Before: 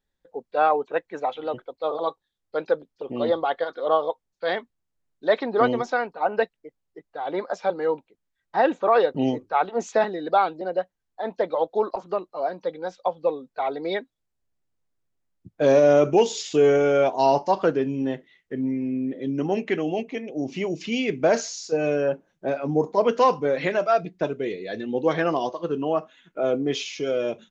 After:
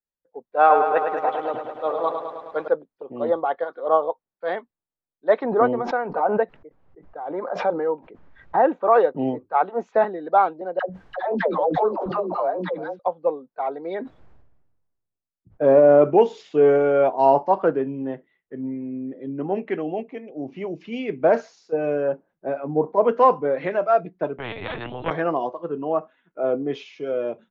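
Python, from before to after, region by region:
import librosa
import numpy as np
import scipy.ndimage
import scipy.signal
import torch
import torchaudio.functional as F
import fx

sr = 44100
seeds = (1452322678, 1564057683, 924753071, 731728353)

y = fx.chain(x, sr, fx.high_shelf(hz=2000.0, db=9.5),
    fx.echo_crushed(ms=105, feedback_pct=80, bits=8, wet_db=-6), at=(0.59, 2.68))
y = fx.chain(y, sr, fx.lowpass(hz=1900.0, slope=6),
    fx.pre_swell(db_per_s=47.0), at=(5.44, 8.72))
y = fx.chain(y, sr, fx.dispersion(late='lows', ms=103.0, hz=510.0),
    fx.echo_single(ms=337, db=-22.5),
    fx.pre_swell(db_per_s=23.0), at=(10.79, 12.99))
y = fx.chain(y, sr, fx.high_shelf(hz=2400.0, db=-7.5),
    fx.sustainer(db_per_s=36.0), at=(13.95, 16.02))
y = fx.chain(y, sr, fx.level_steps(step_db=19),
    fx.lpc_vocoder(seeds[0], excitation='pitch_kept', order=10),
    fx.spectral_comp(ratio=4.0), at=(24.38, 25.11))
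y = scipy.signal.sosfilt(scipy.signal.butter(2, 1200.0, 'lowpass', fs=sr, output='sos'), y)
y = fx.tilt_eq(y, sr, slope=2.0)
y = fx.band_widen(y, sr, depth_pct=40)
y = y * librosa.db_to_amplitude(3.0)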